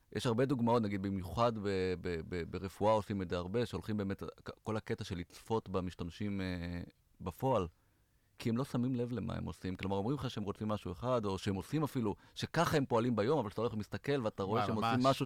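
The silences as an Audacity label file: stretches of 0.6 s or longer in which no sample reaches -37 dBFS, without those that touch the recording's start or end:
7.670000	8.400000	silence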